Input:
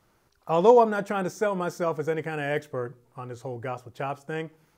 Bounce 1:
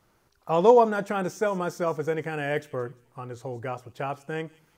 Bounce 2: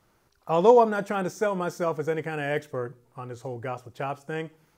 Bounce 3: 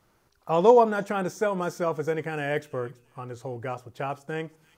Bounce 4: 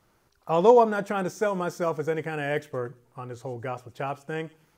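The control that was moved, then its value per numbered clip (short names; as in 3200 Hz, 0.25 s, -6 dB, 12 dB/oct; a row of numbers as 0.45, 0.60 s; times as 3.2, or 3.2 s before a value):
thin delay, time: 174, 60, 331, 115 ms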